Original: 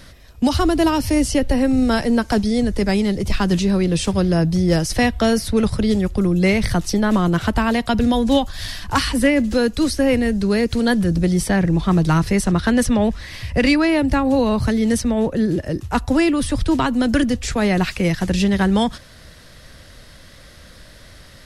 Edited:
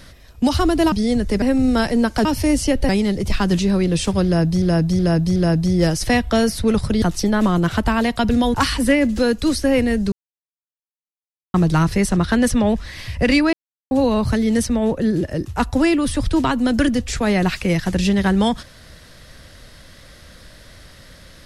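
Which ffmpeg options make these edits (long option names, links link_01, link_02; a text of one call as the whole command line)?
ffmpeg -i in.wav -filter_complex "[0:a]asplit=14[link_01][link_02][link_03][link_04][link_05][link_06][link_07][link_08][link_09][link_10][link_11][link_12][link_13][link_14];[link_01]atrim=end=0.922[link_15];[link_02]atrim=start=2.388:end=2.892[link_16];[link_03]atrim=start=1.558:end=2.392[link_17];[link_04]atrim=start=0.918:end=1.562[link_18];[link_05]atrim=start=2.888:end=4.622[link_19];[link_06]atrim=start=4.248:end=4.622[link_20];[link_07]atrim=start=4.248:end=4.622[link_21];[link_08]atrim=start=4.248:end=5.912[link_22];[link_09]atrim=start=6.718:end=8.242[link_23];[link_10]atrim=start=8.888:end=10.47,asetpts=PTS-STARTPTS,afade=type=out:start_time=1.578:duration=0.004:curve=hsin[link_24];[link_11]atrim=start=10.47:end=11.89,asetpts=PTS-STARTPTS,volume=0[link_25];[link_12]atrim=start=11.89:end=13.88,asetpts=PTS-STARTPTS,afade=type=in:duration=0.004:curve=hsin,afade=type=out:start_time=1.986:duration=0.004:curve=hsin[link_26];[link_13]atrim=start=13.88:end=14.26,asetpts=PTS-STARTPTS,volume=0[link_27];[link_14]atrim=start=14.26,asetpts=PTS-STARTPTS,afade=type=in:duration=0.004:curve=hsin[link_28];[link_15][link_16]acrossfade=duration=0.004:curve1=hsin:curve2=hsin[link_29];[link_29][link_17]acrossfade=duration=0.004:curve1=hsin:curve2=hsin[link_30];[link_30][link_18]acrossfade=duration=0.004:curve1=hsin:curve2=hsin[link_31];[link_31][link_19]acrossfade=duration=0.004:curve1=hsin:curve2=hsin[link_32];[link_32][link_20]acrossfade=duration=0.004:curve1=hsin:curve2=hsin[link_33];[link_33][link_21]acrossfade=duration=0.004:curve1=hsin:curve2=hsin[link_34];[link_34][link_22]acrossfade=duration=0.004:curve1=hsin:curve2=hsin[link_35];[link_35][link_23]acrossfade=duration=0.004:curve1=hsin:curve2=hsin[link_36];[link_24][link_25][link_26][link_27][link_28]concat=n=5:v=0:a=1[link_37];[link_36][link_37]acrossfade=duration=0.004:curve1=hsin:curve2=hsin" out.wav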